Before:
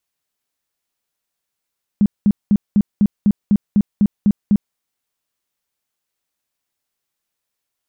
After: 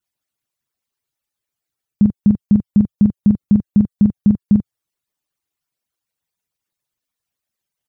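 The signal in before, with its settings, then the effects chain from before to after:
tone bursts 205 Hz, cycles 10, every 0.25 s, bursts 11, -9 dBFS
median-filter separation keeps percussive; bell 110 Hz +7.5 dB 1.5 oct; doubler 43 ms -8.5 dB

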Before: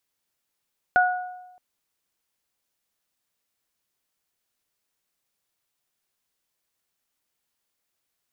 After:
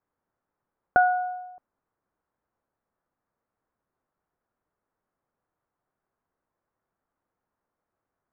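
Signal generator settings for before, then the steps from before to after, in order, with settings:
additive tone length 0.62 s, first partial 729 Hz, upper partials 0 dB, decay 1.04 s, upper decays 0.64 s, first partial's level -15.5 dB
LPF 1400 Hz 24 dB/oct; in parallel at 0 dB: compressor, threshold -30 dBFS

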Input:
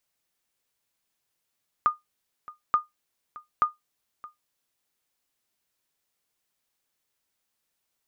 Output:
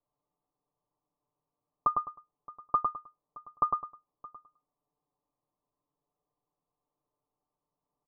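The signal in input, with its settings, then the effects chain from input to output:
sonar ping 1220 Hz, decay 0.16 s, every 0.88 s, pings 3, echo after 0.62 s, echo -20.5 dB -12.5 dBFS
steep low-pass 1200 Hz 96 dB/oct; comb 6.8 ms, depth 71%; on a send: feedback echo 0.104 s, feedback 24%, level -3.5 dB

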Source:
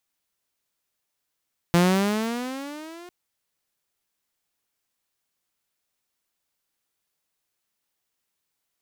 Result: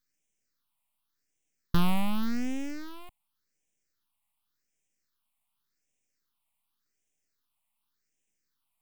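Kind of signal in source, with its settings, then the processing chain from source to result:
gliding synth tone saw, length 1.35 s, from 170 Hz, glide +13 st, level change -26.5 dB, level -12 dB
graphic EQ 250/500/1000/8000 Hz +6/+3/+5/+8 dB; half-wave rectifier; phaser stages 6, 0.88 Hz, lowest notch 410–1200 Hz

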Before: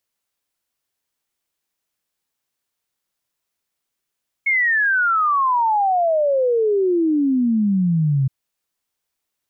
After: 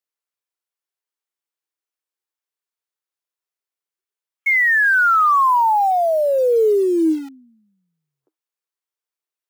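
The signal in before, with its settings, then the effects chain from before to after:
log sweep 2200 Hz -> 130 Hz 3.82 s -14.5 dBFS
spectral noise reduction 9 dB; rippled Chebyshev high-pass 310 Hz, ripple 3 dB; in parallel at -6 dB: bit-crush 6-bit

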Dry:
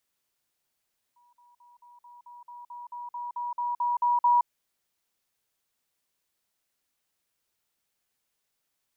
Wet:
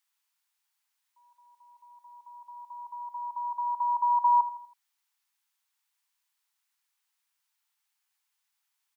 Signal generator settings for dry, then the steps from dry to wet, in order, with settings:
level ladder 965 Hz -59.5 dBFS, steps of 3 dB, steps 15, 0.17 s 0.05 s
Chebyshev high-pass 860 Hz, order 4; on a send: feedback echo 81 ms, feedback 44%, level -13.5 dB

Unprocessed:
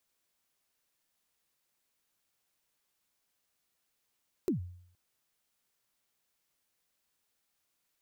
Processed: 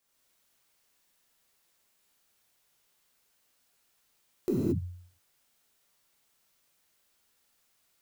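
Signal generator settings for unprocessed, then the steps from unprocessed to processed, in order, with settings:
kick drum length 0.47 s, from 410 Hz, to 89 Hz, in 0.119 s, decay 0.65 s, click on, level -24 dB
non-linear reverb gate 0.25 s flat, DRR -7 dB

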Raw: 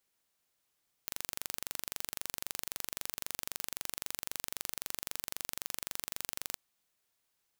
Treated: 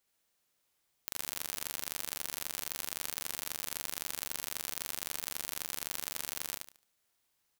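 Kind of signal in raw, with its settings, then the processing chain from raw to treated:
pulse train 23.8/s, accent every 0, -9 dBFS 5.50 s
on a send: feedback echo 72 ms, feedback 28%, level -3 dB

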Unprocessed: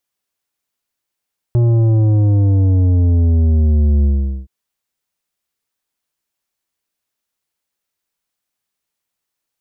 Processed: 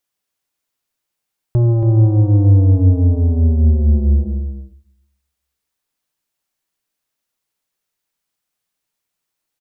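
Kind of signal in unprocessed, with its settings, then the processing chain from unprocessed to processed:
sub drop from 120 Hz, over 2.92 s, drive 9.5 dB, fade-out 0.43 s, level -10.5 dB
on a send: echo 0.278 s -7.5 dB; on the sum: shoebox room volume 780 m³, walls furnished, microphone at 0.51 m

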